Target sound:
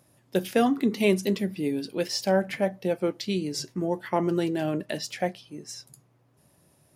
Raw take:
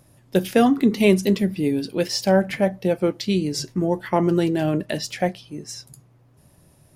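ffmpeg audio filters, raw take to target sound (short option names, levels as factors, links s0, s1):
-af "highpass=f=190:p=1,volume=0.596"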